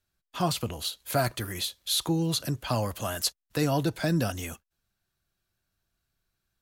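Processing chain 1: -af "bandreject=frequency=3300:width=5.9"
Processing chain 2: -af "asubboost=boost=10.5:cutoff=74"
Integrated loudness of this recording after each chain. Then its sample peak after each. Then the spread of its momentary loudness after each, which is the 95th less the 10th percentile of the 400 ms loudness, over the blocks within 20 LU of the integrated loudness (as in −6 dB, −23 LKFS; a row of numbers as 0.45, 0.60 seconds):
−29.5, −29.0 LKFS; −13.5, −13.5 dBFS; 7, 6 LU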